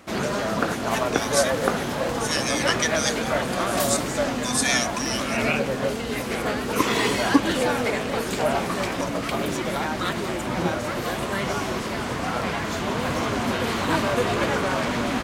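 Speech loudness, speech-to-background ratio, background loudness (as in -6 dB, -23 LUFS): -26.5 LUFS, -2.0 dB, -24.5 LUFS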